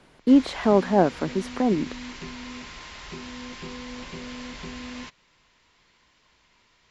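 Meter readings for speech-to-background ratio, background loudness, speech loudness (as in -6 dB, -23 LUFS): 16.0 dB, -38.0 LUFS, -22.0 LUFS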